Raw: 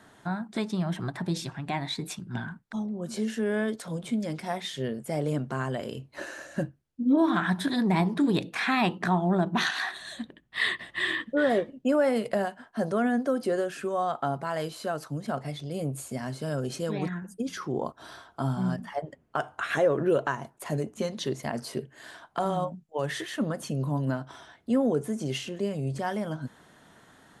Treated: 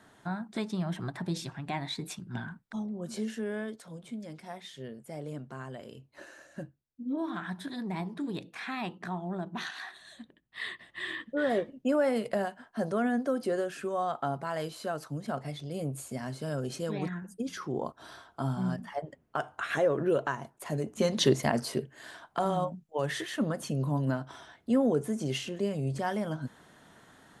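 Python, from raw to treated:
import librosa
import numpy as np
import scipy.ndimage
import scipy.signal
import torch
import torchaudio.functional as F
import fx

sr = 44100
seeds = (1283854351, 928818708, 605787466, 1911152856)

y = fx.gain(x, sr, db=fx.line((3.15, -3.5), (3.89, -11.0), (10.83, -11.0), (11.62, -3.0), (20.78, -3.0), (21.23, 8.0), (21.95, -1.0)))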